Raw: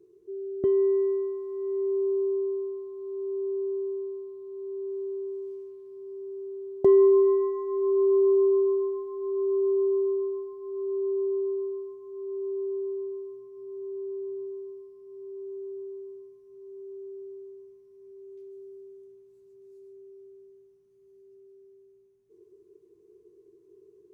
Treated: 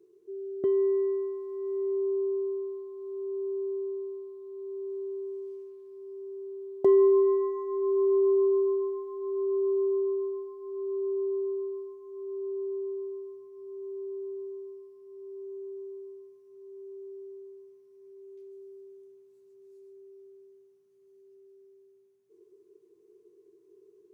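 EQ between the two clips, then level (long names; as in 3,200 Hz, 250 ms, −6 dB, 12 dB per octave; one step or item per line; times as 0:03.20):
high-pass filter 330 Hz 6 dB per octave
0.0 dB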